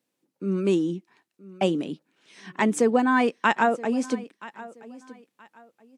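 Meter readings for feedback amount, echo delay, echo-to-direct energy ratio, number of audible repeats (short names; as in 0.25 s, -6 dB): 27%, 0.975 s, -18.5 dB, 2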